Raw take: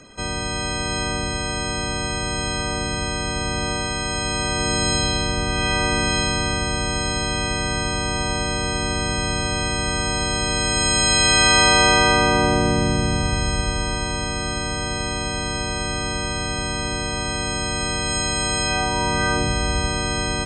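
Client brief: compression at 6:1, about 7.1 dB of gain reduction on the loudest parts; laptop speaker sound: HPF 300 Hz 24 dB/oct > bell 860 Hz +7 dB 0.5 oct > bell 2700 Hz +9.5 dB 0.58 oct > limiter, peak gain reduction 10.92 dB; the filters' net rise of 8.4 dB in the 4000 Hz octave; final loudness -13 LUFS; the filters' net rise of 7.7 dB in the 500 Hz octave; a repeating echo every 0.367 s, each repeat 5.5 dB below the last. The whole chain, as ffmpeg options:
-af "equalizer=f=500:t=o:g=8.5,equalizer=f=4k:t=o:g=6,acompressor=threshold=-16dB:ratio=6,highpass=f=300:w=0.5412,highpass=f=300:w=1.3066,equalizer=f=860:t=o:w=0.5:g=7,equalizer=f=2.7k:t=o:w=0.58:g=9.5,aecho=1:1:367|734|1101|1468|1835|2202|2569:0.531|0.281|0.149|0.079|0.0419|0.0222|0.0118,volume=9.5dB,alimiter=limit=-6dB:level=0:latency=1"

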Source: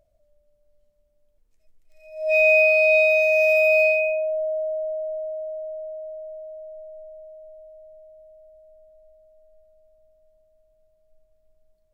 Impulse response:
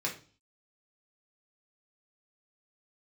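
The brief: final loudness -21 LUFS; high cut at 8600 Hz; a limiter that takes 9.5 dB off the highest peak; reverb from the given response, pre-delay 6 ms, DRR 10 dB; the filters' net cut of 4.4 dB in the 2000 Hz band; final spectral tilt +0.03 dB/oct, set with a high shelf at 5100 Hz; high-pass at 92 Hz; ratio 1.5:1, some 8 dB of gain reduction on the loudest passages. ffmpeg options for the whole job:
-filter_complex "[0:a]highpass=92,lowpass=8.6k,equalizer=f=2k:t=o:g=-5.5,highshelf=f=5.1k:g=-3,acompressor=threshold=-39dB:ratio=1.5,alimiter=level_in=5dB:limit=-24dB:level=0:latency=1,volume=-5dB,asplit=2[a][b];[1:a]atrim=start_sample=2205,adelay=6[c];[b][c]afir=irnorm=-1:irlink=0,volume=-15dB[d];[a][d]amix=inputs=2:normalize=0,volume=15dB"

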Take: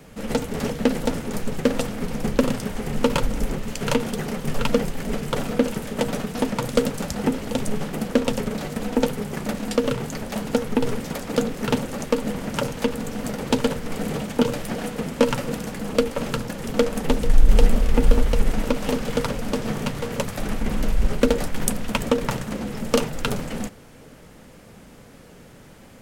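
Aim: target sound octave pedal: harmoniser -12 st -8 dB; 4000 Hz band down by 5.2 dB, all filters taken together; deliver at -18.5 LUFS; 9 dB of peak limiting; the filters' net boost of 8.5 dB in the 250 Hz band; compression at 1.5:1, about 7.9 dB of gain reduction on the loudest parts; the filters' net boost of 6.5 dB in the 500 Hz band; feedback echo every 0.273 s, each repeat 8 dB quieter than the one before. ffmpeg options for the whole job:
-filter_complex "[0:a]equalizer=f=250:t=o:g=8.5,equalizer=f=500:t=o:g=5,equalizer=f=4k:t=o:g=-7.5,acompressor=threshold=-29dB:ratio=1.5,alimiter=limit=-13.5dB:level=0:latency=1,aecho=1:1:273|546|819|1092|1365:0.398|0.159|0.0637|0.0255|0.0102,asplit=2[a][b];[b]asetrate=22050,aresample=44100,atempo=2,volume=-8dB[c];[a][c]amix=inputs=2:normalize=0,volume=7dB"

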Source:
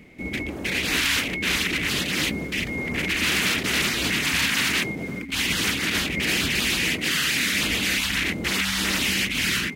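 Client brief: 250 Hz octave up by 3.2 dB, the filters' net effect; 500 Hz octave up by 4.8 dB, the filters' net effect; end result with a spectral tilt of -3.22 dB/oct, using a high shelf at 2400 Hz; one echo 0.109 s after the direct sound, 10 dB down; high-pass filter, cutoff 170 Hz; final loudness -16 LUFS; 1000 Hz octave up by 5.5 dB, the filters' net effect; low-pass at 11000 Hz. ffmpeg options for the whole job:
-af "highpass=170,lowpass=11k,equalizer=f=250:t=o:g=4,equalizer=f=500:t=o:g=3.5,equalizer=f=1k:t=o:g=8,highshelf=f=2.4k:g=-7,aecho=1:1:109:0.316,volume=7.5dB"

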